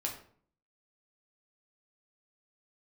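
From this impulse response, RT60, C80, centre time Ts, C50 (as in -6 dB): 0.55 s, 11.5 dB, 22 ms, 7.5 dB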